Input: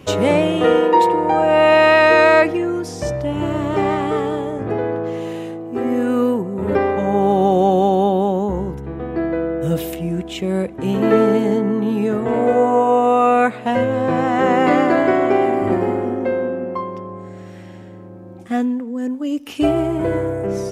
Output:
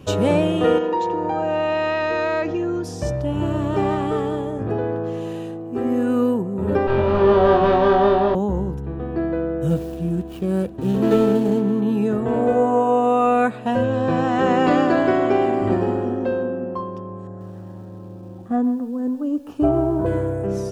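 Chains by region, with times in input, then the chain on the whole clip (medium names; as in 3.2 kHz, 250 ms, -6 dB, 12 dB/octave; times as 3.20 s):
0.78–2.84 s: compression 2.5:1, threshold -17 dBFS + careless resampling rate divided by 3×, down none, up filtered
6.87–8.35 s: comb filter that takes the minimum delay 8.3 ms + low-pass 4.3 kHz 24 dB/octave + flutter echo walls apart 3.9 m, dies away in 0.5 s
9.69–11.81 s: median filter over 25 samples + treble shelf 9.3 kHz +8.5 dB
13.84–16.43 s: low-pass 5.2 kHz + treble shelf 3.8 kHz +11 dB
17.27–20.06 s: resonant high shelf 1.7 kHz -13 dB, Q 1.5 + bit-crushed delay 135 ms, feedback 35%, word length 7-bit, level -14.5 dB
whole clip: bass shelf 200 Hz +7.5 dB; band-stop 2.1 kHz, Q 5.7; trim -4 dB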